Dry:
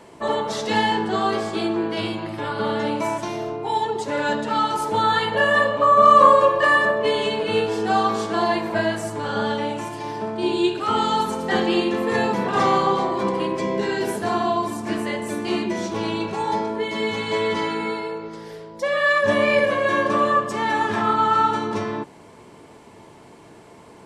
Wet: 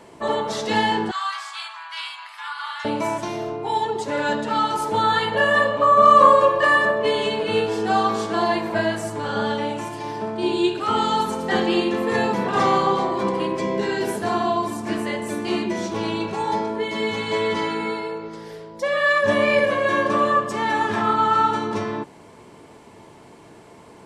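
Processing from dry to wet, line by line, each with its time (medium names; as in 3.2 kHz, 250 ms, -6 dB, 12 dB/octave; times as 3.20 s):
1.11–2.85 s: steep high-pass 950 Hz 48 dB/octave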